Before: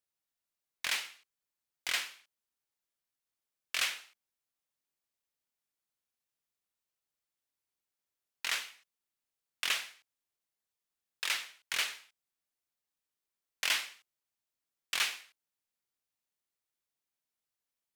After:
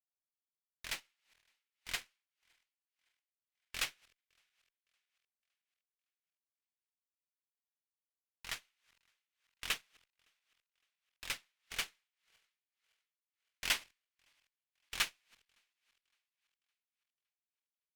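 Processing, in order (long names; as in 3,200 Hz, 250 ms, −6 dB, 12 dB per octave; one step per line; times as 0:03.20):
feedback delay that plays each chunk backwards 281 ms, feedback 67%, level −12 dB
harmonic generator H 3 −17 dB, 8 −22 dB, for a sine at −17 dBFS
expander for the loud parts 2.5 to 1, over −47 dBFS
level +2.5 dB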